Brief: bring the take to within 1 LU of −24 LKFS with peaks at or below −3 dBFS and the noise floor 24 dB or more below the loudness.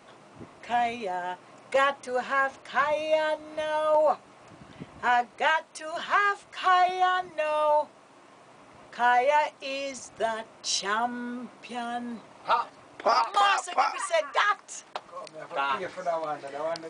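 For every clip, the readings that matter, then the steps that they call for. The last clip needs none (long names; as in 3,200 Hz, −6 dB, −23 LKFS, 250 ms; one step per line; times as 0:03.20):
integrated loudness −27.0 LKFS; sample peak −9.5 dBFS; target loudness −24.0 LKFS
→ level +3 dB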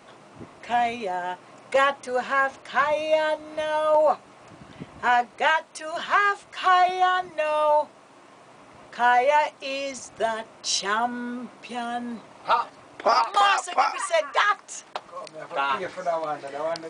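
integrated loudness −24.0 LKFS; sample peak −6.5 dBFS; background noise floor −51 dBFS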